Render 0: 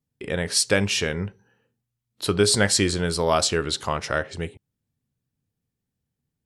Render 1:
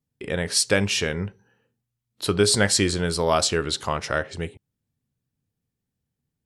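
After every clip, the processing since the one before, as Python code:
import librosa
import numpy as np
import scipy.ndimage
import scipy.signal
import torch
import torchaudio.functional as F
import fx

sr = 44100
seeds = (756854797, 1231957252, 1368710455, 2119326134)

y = x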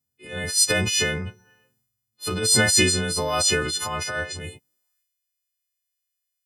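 y = fx.freq_snap(x, sr, grid_st=3)
y = fx.filter_sweep_highpass(y, sr, from_hz=75.0, to_hz=2300.0, start_s=4.48, end_s=5.04, q=1.3)
y = fx.transient(y, sr, attack_db=-11, sustain_db=7)
y = y * librosa.db_to_amplitude(-4.5)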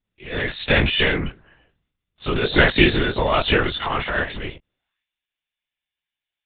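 y = fx.lpc_vocoder(x, sr, seeds[0], excitation='whisper', order=10)
y = y * librosa.db_to_amplitude(5.5)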